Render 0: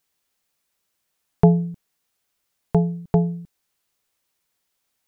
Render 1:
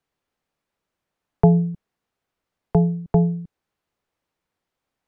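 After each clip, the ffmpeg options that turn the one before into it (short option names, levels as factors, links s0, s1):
-filter_complex "[0:a]lowpass=f=1000:p=1,acrossover=split=160|440[s0][s1][s2];[s1]alimiter=limit=0.0891:level=0:latency=1:release=12[s3];[s0][s3][s2]amix=inputs=3:normalize=0,volume=1.5"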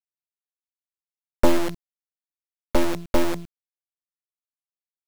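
-af "acrusher=bits=5:dc=4:mix=0:aa=0.000001,aeval=exprs='abs(val(0))':c=same"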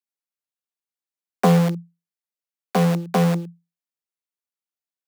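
-af "afreqshift=170"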